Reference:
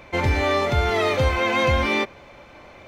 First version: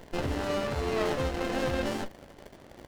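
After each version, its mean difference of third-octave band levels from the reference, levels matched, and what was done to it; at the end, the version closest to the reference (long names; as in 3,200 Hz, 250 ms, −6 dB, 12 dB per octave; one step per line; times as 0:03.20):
5.5 dB: low-shelf EQ 230 Hz −12 dB
surface crackle 280 per second −36 dBFS
double-tracking delay 14 ms −7 dB
windowed peak hold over 33 samples
level −4 dB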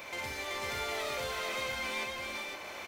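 11.0 dB: RIAA equalisation recording
downward compressor 8 to 1, threshold −33 dBFS, peak gain reduction 16 dB
soft clipping −35.5 dBFS, distortion −11 dB
multi-tap delay 59/381/509 ms −5.5/−3.5/−3.5 dB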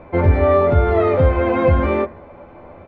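8.5 dB: low-pass filter 1,000 Hz 12 dB per octave
double-tracking delay 12 ms −5.5 dB
hum removal 75.94 Hz, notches 29
level +6.5 dB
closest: first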